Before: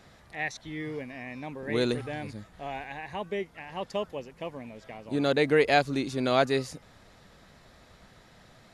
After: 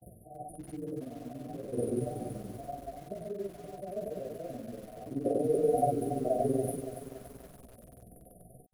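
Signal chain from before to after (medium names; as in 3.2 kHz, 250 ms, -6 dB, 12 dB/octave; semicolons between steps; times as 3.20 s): short-time spectra conjugated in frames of 169 ms; transient shaper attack -9 dB, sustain +6 dB; upward compressor, threshold -34 dBFS; granulator 51 ms, grains 21 per s, pitch spread up and down by 0 st; expander -44 dBFS; resonant high shelf 3.5 kHz +11.5 dB, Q 1.5; chorus 2.9 Hz, delay 15 ms, depth 2.7 ms; dynamic bell 720 Hz, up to +4 dB, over -54 dBFS, Q 4.4; FFT band-reject 760–9300 Hz; bit-crushed delay 283 ms, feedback 55%, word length 9-bit, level -10 dB; trim +6 dB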